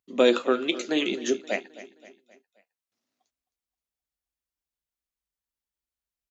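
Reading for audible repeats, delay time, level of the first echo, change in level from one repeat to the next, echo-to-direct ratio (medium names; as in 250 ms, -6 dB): 3, 263 ms, -17.0 dB, -6.5 dB, -16.0 dB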